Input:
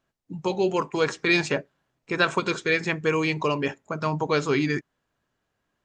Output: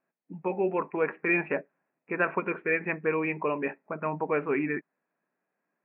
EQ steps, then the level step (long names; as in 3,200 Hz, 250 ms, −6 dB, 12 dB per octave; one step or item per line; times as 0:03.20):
linear-phase brick-wall high-pass 150 Hz
Chebyshev low-pass with heavy ripple 2,600 Hz, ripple 3 dB
−2.5 dB